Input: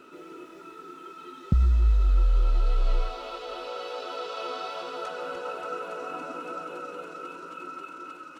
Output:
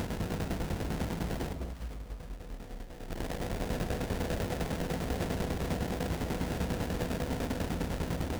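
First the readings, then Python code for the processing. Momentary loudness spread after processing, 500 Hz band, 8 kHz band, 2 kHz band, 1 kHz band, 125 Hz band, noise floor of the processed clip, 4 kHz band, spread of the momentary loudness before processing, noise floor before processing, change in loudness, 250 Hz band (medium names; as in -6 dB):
11 LU, -0.5 dB, no reading, 0.0 dB, -5.5 dB, -4.5 dB, -45 dBFS, -1.0 dB, 20 LU, -46 dBFS, -5.0 dB, +7.5 dB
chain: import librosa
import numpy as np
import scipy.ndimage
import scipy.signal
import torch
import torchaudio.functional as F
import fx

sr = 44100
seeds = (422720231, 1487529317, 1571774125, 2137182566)

p1 = fx.bin_compress(x, sr, power=0.2)
p2 = fx.peak_eq(p1, sr, hz=130.0, db=-14.5, octaves=0.42)
p3 = fx.over_compress(p2, sr, threshold_db=-23.0, ratio=-0.5)
p4 = 10.0 ** (-24.5 / 20.0) * np.tanh(p3 / 10.0 ** (-24.5 / 20.0))
p5 = fx.tremolo_shape(p4, sr, shape='saw_down', hz=10.0, depth_pct=70)
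p6 = scipy.signal.sosfilt(scipy.signal.butter(2, 46.0, 'highpass', fs=sr, output='sos'), p5)
p7 = fx.sample_hold(p6, sr, seeds[0], rate_hz=1200.0, jitter_pct=20)
p8 = p7 + fx.echo_alternate(p7, sr, ms=205, hz=810.0, feedback_pct=51, wet_db=-5, dry=0)
p9 = fx.end_taper(p8, sr, db_per_s=150.0)
y = p9 * librosa.db_to_amplitude(-1.5)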